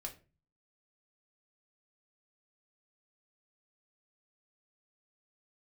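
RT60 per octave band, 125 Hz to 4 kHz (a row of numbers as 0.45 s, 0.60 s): 0.65 s, 0.50 s, 0.40 s, 0.30 s, 0.30 s, 0.25 s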